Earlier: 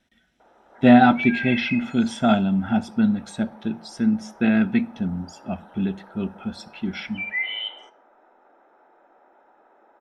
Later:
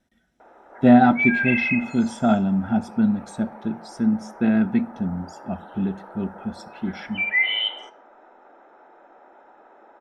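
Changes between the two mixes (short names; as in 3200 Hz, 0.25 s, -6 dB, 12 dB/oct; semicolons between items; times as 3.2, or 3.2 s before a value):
speech: add bell 2900 Hz -9.5 dB 1.5 oct; background +6.0 dB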